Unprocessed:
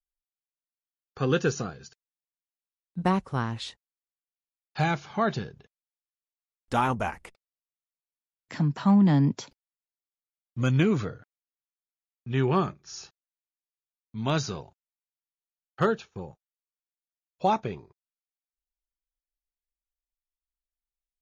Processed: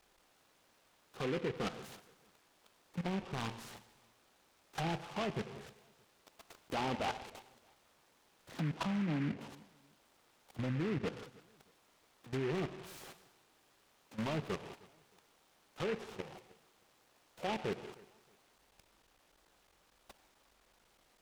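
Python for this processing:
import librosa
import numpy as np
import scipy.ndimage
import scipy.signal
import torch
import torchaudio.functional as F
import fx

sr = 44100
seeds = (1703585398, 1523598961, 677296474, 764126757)

p1 = x + 0.5 * 10.0 ** (-31.0 / 20.0) * np.sign(x)
p2 = fx.lowpass(p1, sr, hz=1300.0, slope=6)
p3 = fx.env_lowpass_down(p2, sr, base_hz=580.0, full_db=-20.0)
p4 = fx.highpass(p3, sr, hz=400.0, slope=6)
p5 = fx.level_steps(p4, sr, step_db=18)
p6 = np.clip(p5, -10.0 ** (-31.5 / 20.0), 10.0 ** (-31.5 / 20.0))
p7 = p6 + fx.echo_feedback(p6, sr, ms=312, feedback_pct=28, wet_db=-23.0, dry=0)
p8 = fx.rev_gated(p7, sr, seeds[0], gate_ms=210, shape='flat', drr_db=11.5)
p9 = fx.noise_mod_delay(p8, sr, seeds[1], noise_hz=1700.0, depth_ms=0.11)
y = p9 * 10.0 ** (1.5 / 20.0)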